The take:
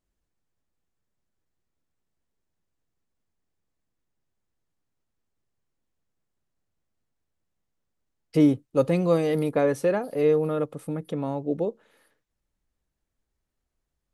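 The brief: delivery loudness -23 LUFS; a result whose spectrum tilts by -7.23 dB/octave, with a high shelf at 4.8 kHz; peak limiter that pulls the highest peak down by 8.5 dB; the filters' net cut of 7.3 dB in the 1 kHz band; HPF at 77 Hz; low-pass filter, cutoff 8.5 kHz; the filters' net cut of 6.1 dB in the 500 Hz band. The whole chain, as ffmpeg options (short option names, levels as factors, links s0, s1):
-af "highpass=77,lowpass=8500,equalizer=f=500:t=o:g=-5,equalizer=f=1000:t=o:g=-8,highshelf=f=4800:g=-7,volume=2.37,alimiter=limit=0.251:level=0:latency=1"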